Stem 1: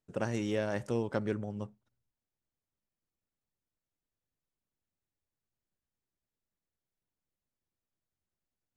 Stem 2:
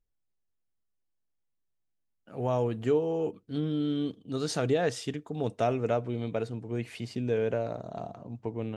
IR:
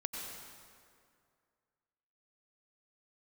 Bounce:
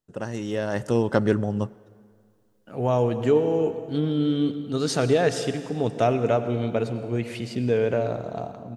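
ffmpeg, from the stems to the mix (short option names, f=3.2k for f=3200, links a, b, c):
-filter_complex "[0:a]bandreject=f=2.3k:w=7.3,volume=1dB,asplit=2[a][b];[b]volume=-22dB[c];[1:a]adelay=400,volume=-9dB,asplit=2[d][e];[e]volume=-5.5dB[f];[2:a]atrim=start_sample=2205[g];[c][f]amix=inputs=2:normalize=0[h];[h][g]afir=irnorm=-1:irlink=0[i];[a][d][i]amix=inputs=3:normalize=0,dynaudnorm=f=240:g=7:m=12dB"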